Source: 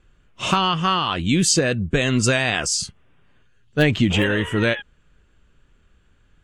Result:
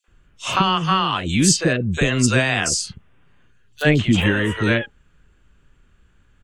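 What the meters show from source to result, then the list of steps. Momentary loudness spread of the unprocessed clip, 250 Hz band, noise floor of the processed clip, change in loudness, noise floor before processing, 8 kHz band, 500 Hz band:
6 LU, +1.5 dB, -58 dBFS, +1.5 dB, -59 dBFS, +1.5 dB, -0.5 dB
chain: three bands offset in time highs, mids, lows 40/80 ms, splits 530/3900 Hz; gain +2 dB

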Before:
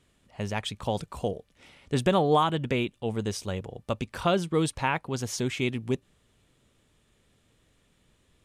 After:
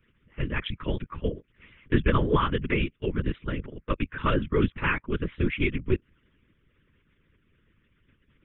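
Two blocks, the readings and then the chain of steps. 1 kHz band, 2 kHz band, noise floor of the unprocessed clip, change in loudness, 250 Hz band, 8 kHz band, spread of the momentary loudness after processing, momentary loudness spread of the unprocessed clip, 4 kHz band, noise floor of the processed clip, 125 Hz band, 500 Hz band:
-3.0 dB, +4.0 dB, -68 dBFS, +0.5 dB, +1.5 dB, under -40 dB, 10 LU, 10 LU, -3.5 dB, -69 dBFS, +2.5 dB, -1.5 dB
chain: LPC vocoder at 8 kHz whisper; fixed phaser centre 1800 Hz, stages 4; harmonic-percussive split harmonic -14 dB; gain +7 dB

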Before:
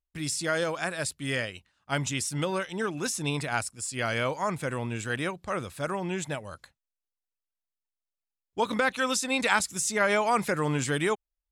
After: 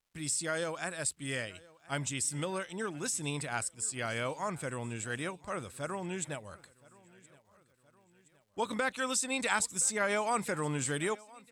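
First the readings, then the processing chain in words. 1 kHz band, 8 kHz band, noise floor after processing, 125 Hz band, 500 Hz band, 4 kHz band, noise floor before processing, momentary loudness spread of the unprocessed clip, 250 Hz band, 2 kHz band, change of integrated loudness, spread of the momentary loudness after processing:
-6.5 dB, -0.5 dB, -69 dBFS, -6.5 dB, -6.5 dB, -6.5 dB, under -85 dBFS, 9 LU, -6.5 dB, -6.5 dB, -5.0 dB, 9 LU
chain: bell 8100 Hz +11.5 dB 0.21 oct; crackle 420/s -59 dBFS; feedback echo 1.02 s, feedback 51%, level -23 dB; gain -6.5 dB

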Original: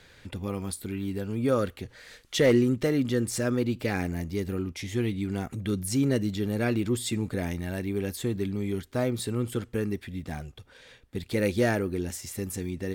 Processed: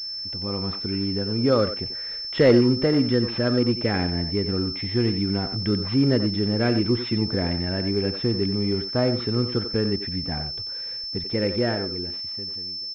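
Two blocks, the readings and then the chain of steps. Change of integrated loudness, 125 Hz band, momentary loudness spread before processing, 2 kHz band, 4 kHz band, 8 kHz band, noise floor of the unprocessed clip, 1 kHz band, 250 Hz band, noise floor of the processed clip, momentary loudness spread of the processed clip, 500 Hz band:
+5.5 dB, +4.5 dB, 10 LU, +2.0 dB, +14.5 dB, under -15 dB, -56 dBFS, +4.5 dB, +5.0 dB, -33 dBFS, 8 LU, +5.0 dB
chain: ending faded out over 2.41 s; AGC gain up to 10 dB; air absorption 70 m; speakerphone echo 90 ms, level -8 dB; pulse-width modulation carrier 5300 Hz; gain -4.5 dB

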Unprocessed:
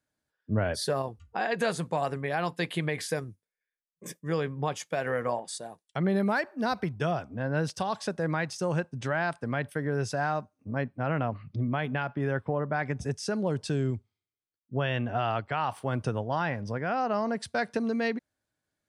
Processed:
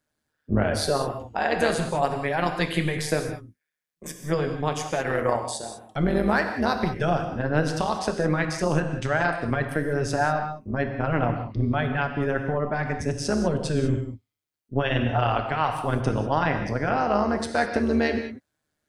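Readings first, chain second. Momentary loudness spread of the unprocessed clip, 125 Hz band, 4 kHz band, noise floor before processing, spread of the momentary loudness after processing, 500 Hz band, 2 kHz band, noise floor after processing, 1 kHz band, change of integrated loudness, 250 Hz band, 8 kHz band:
5 LU, +4.5 dB, +5.5 dB, under -85 dBFS, 6 LU, +5.0 dB, +5.0 dB, -80 dBFS, +5.5 dB, +5.5 dB, +5.5 dB, +5.5 dB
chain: AM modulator 150 Hz, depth 60%; non-linear reverb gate 0.22 s flat, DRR 5 dB; gain +7.5 dB

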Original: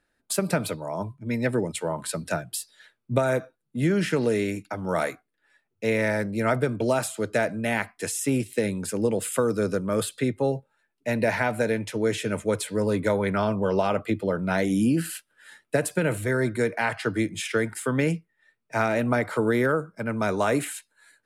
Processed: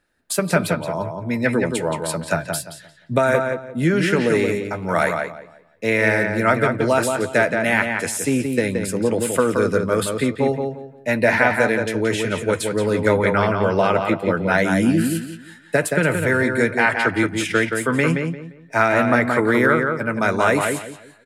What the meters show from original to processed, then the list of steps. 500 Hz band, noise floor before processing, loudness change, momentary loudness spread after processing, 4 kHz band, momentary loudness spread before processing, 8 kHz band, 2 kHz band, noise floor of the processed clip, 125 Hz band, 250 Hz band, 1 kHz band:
+6.0 dB, -77 dBFS, +6.5 dB, 8 LU, +6.0 dB, 7 LU, +4.0 dB, +10.0 dB, -47 dBFS, +4.5 dB, +5.5 dB, +8.0 dB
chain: doubler 12 ms -11.5 dB; darkening echo 0.174 s, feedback 29%, low-pass 3600 Hz, level -4.5 dB; dynamic EQ 1700 Hz, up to +6 dB, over -35 dBFS, Q 0.86; gain +3.5 dB

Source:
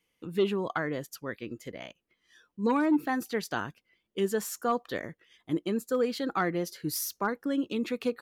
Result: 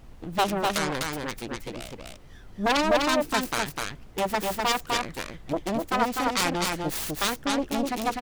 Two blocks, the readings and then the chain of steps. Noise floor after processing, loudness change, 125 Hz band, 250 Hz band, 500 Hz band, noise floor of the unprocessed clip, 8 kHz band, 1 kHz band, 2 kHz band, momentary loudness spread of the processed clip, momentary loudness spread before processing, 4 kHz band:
-47 dBFS, +4.0 dB, +3.5 dB, +0.5 dB, +2.0 dB, -79 dBFS, +7.5 dB, +8.0 dB, +7.0 dB, 12 LU, 14 LU, +12.0 dB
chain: self-modulated delay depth 0.97 ms; echo 0.251 s -3 dB; added noise brown -47 dBFS; gain +3 dB

